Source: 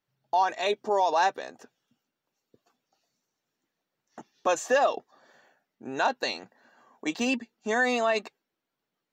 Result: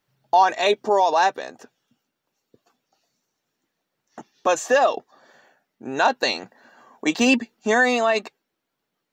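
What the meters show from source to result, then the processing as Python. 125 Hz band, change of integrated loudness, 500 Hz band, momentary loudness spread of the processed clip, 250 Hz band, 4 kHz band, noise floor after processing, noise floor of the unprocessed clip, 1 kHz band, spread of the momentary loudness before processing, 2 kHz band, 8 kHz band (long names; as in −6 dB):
can't be measured, +6.5 dB, +6.0 dB, 13 LU, +8.5 dB, +7.5 dB, −80 dBFS, below −85 dBFS, +6.5 dB, 15 LU, +7.0 dB, +6.5 dB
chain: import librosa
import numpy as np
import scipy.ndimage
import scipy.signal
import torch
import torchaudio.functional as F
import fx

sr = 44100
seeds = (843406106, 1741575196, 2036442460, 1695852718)

y = fx.rider(x, sr, range_db=10, speed_s=0.5)
y = y * 10.0 ** (8.0 / 20.0)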